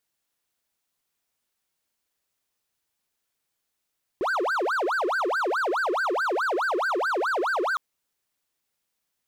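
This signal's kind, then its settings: siren wail 345–1580 Hz 4.7 per s triangle -20.5 dBFS 3.56 s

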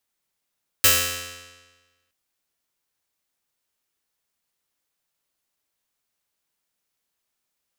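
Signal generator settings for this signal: plucked string F2, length 1.27 s, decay 1.32 s, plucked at 0.44, bright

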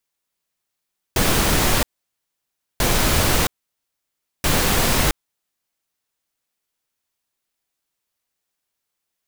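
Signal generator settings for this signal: noise bursts pink, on 0.67 s, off 0.97 s, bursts 3, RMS -17.5 dBFS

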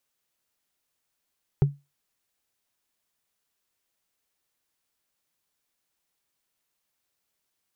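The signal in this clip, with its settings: wood hit, lowest mode 142 Hz, decay 0.23 s, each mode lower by 9 dB, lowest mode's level -12 dB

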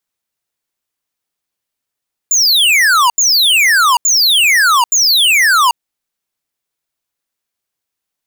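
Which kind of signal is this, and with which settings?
burst of laser zaps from 7.3 kHz, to 920 Hz, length 0.79 s square, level -9.5 dB, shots 4, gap 0.08 s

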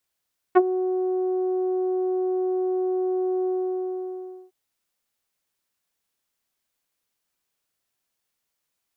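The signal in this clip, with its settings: synth note saw F#4 24 dB/octave, low-pass 600 Hz, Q 0.74, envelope 2 oct, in 0.05 s, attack 22 ms, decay 0.05 s, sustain -12 dB, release 1.05 s, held 2.91 s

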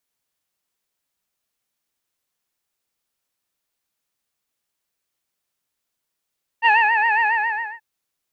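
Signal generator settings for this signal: synth patch with vibrato A5, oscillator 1 triangle, oscillator 2 sine, interval +12 st, oscillator 2 level -7 dB, sub -29 dB, noise -27 dB, filter lowpass, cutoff 2.1 kHz, Q 6, filter envelope 0.5 oct, attack 41 ms, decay 0.24 s, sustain -5.5 dB, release 0.56 s, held 0.62 s, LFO 7.3 Hz, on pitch 99 cents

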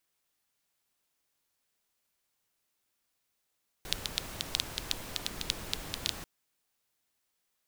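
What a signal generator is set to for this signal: rain from filtered ticks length 2.39 s, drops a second 6.8, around 3.7 kHz, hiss -3 dB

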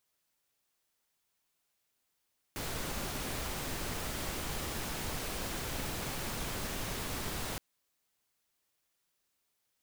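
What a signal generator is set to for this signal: noise pink, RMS -37.5 dBFS 5.02 s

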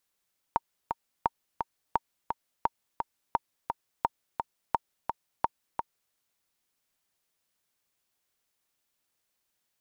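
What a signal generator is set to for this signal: metronome 172 bpm, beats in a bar 2, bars 8, 924 Hz, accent 5.5 dB -10.5 dBFS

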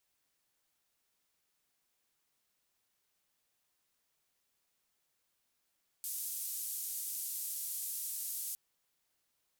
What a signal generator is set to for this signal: noise band 7.9–15 kHz, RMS -40 dBFS 2.51 s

